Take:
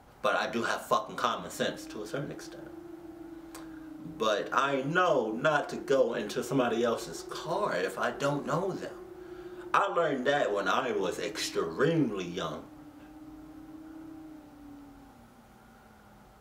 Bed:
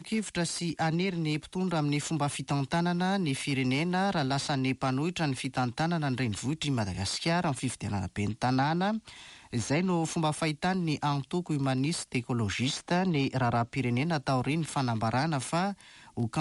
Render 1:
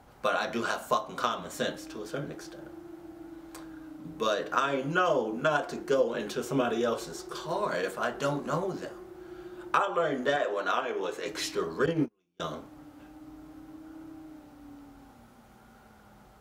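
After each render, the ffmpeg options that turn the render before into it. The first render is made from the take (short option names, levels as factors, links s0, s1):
-filter_complex "[0:a]asettb=1/sr,asplit=3[s0][s1][s2];[s0]atrim=end=10.364[s3];[s1]atrim=start=10.36:end=11.26,asetpts=PTS-STARTPTS,afade=t=in:d=0.004:c=qsin,afade=t=out:st=0.896:d=0.004:c=qsin,bass=f=250:g=-13,treble=f=4000:g=-6[s4];[s2]atrim=start=11.256[s5];[s3][s4]acrossfade=d=0.004:c1=hsin:c2=qsin[s6];[s6][s5]acrossfade=d=0.004:c1=qsin:c2=hsin,asettb=1/sr,asplit=3[s7][s8][s9];[s7]atrim=end=11.864[s10];[s8]atrim=start=11.86:end=12.4,asetpts=PTS-STARTPTS,afade=t=in:d=0.004:c=qsin,afade=t=out:st=0.536:d=0.004:c=qsin,agate=range=0.01:threshold=0.0398:ratio=16:release=100:detection=peak[s11];[s9]atrim=start=12.396[s12];[s10][s11]acrossfade=d=0.004:c1=hsin:c2=qsin[s13];[s13][s12]acrossfade=d=0.004:c1=qsin:c2=hsin"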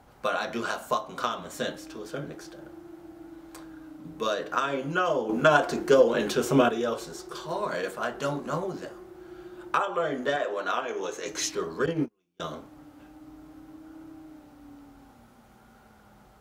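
-filter_complex "[0:a]asettb=1/sr,asplit=3[s0][s1][s2];[s0]atrim=end=5.294[s3];[s1]atrim=start=5.29:end=6.69,asetpts=PTS-STARTPTS,afade=t=in:d=0.004:c=qsin,afade=t=out:st=1.396:d=0.004:c=qsin,acontrast=84[s4];[s2]atrim=start=6.686[s5];[s3][s4]acrossfade=d=0.004:c1=hsin:c2=qsin[s6];[s6][s5]acrossfade=d=0.004:c1=qsin:c2=hsin,asettb=1/sr,asplit=3[s7][s8][s9];[s7]atrim=end=10.884[s10];[s8]atrim=start=10.88:end=11.5,asetpts=PTS-STARTPTS,afade=t=in:d=0.004:c=qsin,afade=t=out:st=0.616:d=0.004:c=qsin,equalizer=f=6300:t=o:w=0.3:g=12[s11];[s9]atrim=start=11.496[s12];[s10][s11]acrossfade=d=0.004:c1=hsin:c2=qsin[s13];[s13][s12]acrossfade=d=0.004:c1=qsin:c2=hsin"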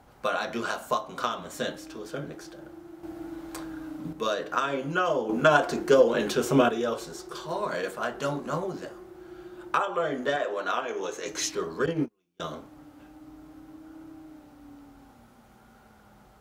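-filter_complex "[0:a]asettb=1/sr,asplit=3[s0][s1][s2];[s0]atrim=end=3.034[s3];[s1]atrim=start=3.03:end=4.13,asetpts=PTS-STARTPTS,afade=t=in:d=0.004:c=qsin,afade=t=out:st=1.096:d=0.004:c=qsin,acontrast=70[s4];[s2]atrim=start=4.126[s5];[s3][s4]acrossfade=d=0.004:c1=hsin:c2=qsin[s6];[s6][s5]acrossfade=d=0.004:c1=qsin:c2=hsin"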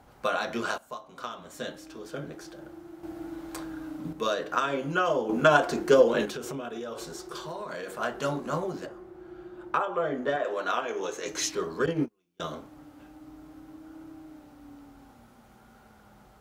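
-filter_complex "[0:a]asettb=1/sr,asplit=3[s0][s1][s2];[s0]atrim=end=6.254[s3];[s1]atrim=start=6.25:end=7.99,asetpts=PTS-STARTPTS,afade=t=in:d=0.004:c=qsin,afade=t=out:st=1.736:d=0.004:c=qsin,acompressor=threshold=0.0251:ratio=12:attack=3.2:release=140:knee=1:detection=peak[s4];[s2]atrim=start=7.986[s5];[s3][s4]acrossfade=d=0.004:c1=hsin:c2=qsin[s6];[s6][s5]acrossfade=d=0.004:c1=qsin:c2=hsin,asettb=1/sr,asplit=3[s7][s8][s9];[s7]atrim=end=8.864[s10];[s8]atrim=start=8.86:end=10.45,asetpts=PTS-STARTPTS,afade=t=in:d=0.004:c=qsin,afade=t=out:st=1.586:d=0.004:c=qsin,highshelf=f=3000:g=-11.5[s11];[s9]atrim=start=10.446[s12];[s10][s11]acrossfade=d=0.004:c1=hsin:c2=qsin[s13];[s13][s12]acrossfade=d=0.004:c1=qsin:c2=hsin,asplit=2[s14][s15];[s14]atrim=end=0.78,asetpts=PTS-STARTPTS,afade=t=out:st=0.776:d=0.004:c=hsin:silence=0.16788[s16];[s15]atrim=start=0.78,asetpts=PTS-STARTPTS,afade=t=in:d=1.82:silence=0.16788[s17];[s16][s17]concat=n=2:v=0:a=1"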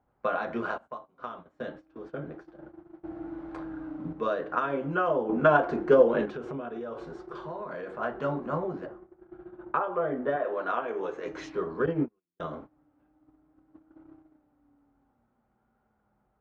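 -af "lowpass=1600,agate=range=0.141:threshold=0.00631:ratio=16:detection=peak"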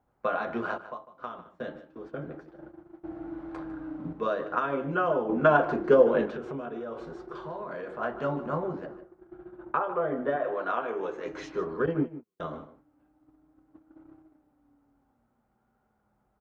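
-filter_complex "[0:a]asplit=2[s0][s1];[s1]adelay=151.6,volume=0.2,highshelf=f=4000:g=-3.41[s2];[s0][s2]amix=inputs=2:normalize=0"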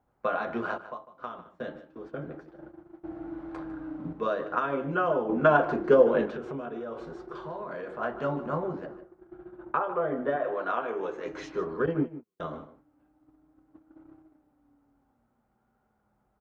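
-af anull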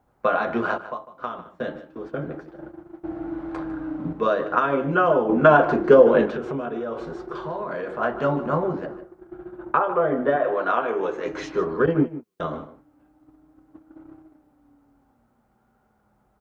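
-af "volume=2.37,alimiter=limit=0.708:level=0:latency=1"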